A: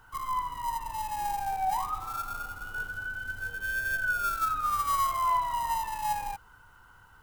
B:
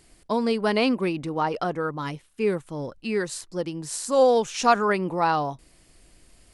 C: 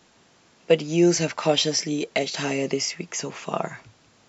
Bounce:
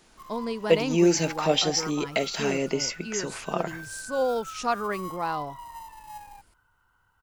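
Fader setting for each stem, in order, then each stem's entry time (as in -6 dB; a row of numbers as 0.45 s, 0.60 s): -12.0 dB, -7.5 dB, -2.0 dB; 0.05 s, 0.00 s, 0.00 s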